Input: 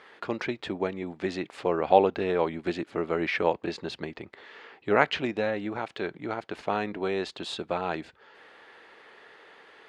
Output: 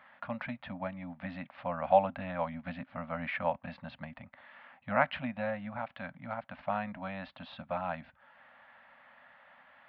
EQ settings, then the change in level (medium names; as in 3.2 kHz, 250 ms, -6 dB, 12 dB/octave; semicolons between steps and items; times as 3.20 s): Gaussian low-pass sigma 3.2 samples; elliptic band-stop 260–560 Hz, stop band 40 dB; -2.5 dB